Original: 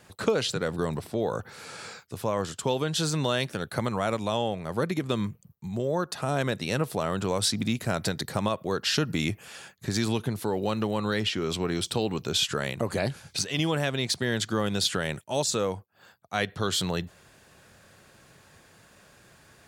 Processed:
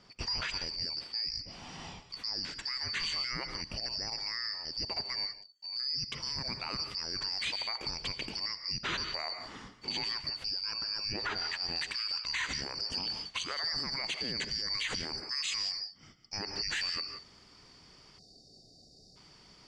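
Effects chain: four frequency bands reordered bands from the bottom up 2341; distance through air 140 m; gated-style reverb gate 200 ms rising, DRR 12 dB; 18.19–19.16 s: spectral selection erased 790–3600 Hz; treble shelf 3.8 kHz -2.5 dB, from 11.76 s +5.5 dB; peak limiter -24.5 dBFS, peak gain reduction 11.5 dB

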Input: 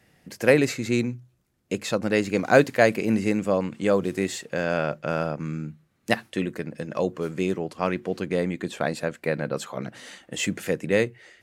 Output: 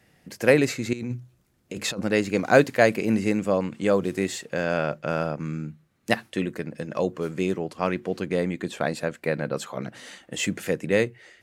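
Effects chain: 0.93–2.02 s: compressor with a negative ratio -31 dBFS, ratio -1

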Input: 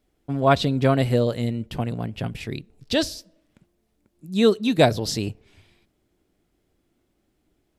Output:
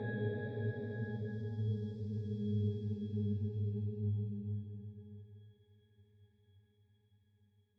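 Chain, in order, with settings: rotary cabinet horn 6 Hz, later 0.85 Hz, at 2.80 s; Paulstretch 8.5×, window 0.50 s, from 4.85 s; pitch-class resonator G#, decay 0.39 s; trim +1 dB

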